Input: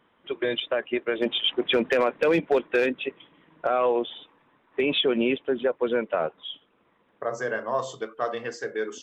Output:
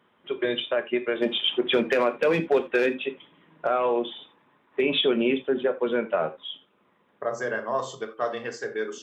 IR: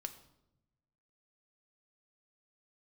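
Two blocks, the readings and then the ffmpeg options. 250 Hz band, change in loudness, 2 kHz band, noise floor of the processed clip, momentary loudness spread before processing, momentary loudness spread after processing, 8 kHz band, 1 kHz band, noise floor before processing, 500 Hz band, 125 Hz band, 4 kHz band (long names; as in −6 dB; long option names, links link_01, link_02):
+0.5 dB, 0.0 dB, 0.0 dB, −65 dBFS, 12 LU, 12 LU, can't be measured, 0.0 dB, −66 dBFS, 0.0 dB, +1.5 dB, 0.0 dB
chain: -filter_complex "[0:a]highpass=71[link_01];[1:a]atrim=start_sample=2205,atrim=end_sample=3969,asetrate=42777,aresample=44100[link_02];[link_01][link_02]afir=irnorm=-1:irlink=0,volume=3dB"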